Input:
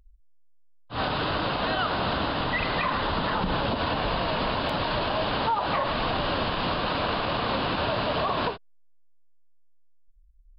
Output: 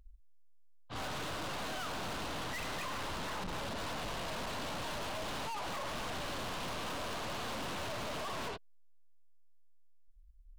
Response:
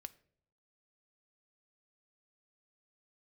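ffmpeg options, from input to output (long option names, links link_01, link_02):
-af "aeval=exprs='(tanh(100*val(0)+0.55)-tanh(0.55))/100':channel_layout=same,volume=1dB"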